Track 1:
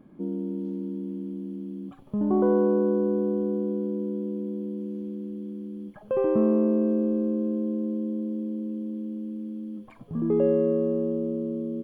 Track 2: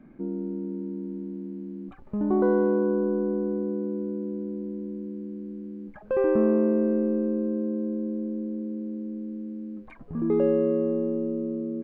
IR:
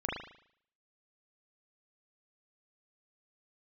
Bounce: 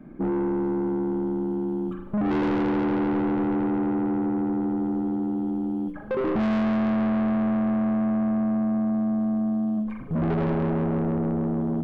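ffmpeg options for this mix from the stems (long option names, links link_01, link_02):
-filter_complex "[0:a]agate=range=-12dB:threshold=-39dB:ratio=16:detection=peak,equalizer=frequency=850:width=1.2:gain=3,volume=2.5dB,asplit=2[link_01][link_02];[link_02]volume=-4.5dB[link_03];[1:a]highshelf=frequency=2400:gain=-11,volume=2.5dB,asplit=2[link_04][link_05];[link_05]volume=-3.5dB[link_06];[2:a]atrim=start_sample=2205[link_07];[link_03][link_06]amix=inputs=2:normalize=0[link_08];[link_08][link_07]afir=irnorm=-1:irlink=0[link_09];[link_01][link_04][link_09]amix=inputs=3:normalize=0,acrossover=split=360[link_10][link_11];[link_11]acompressor=threshold=-36dB:ratio=1.5[link_12];[link_10][link_12]amix=inputs=2:normalize=0,asoftclip=type=tanh:threshold=-22dB"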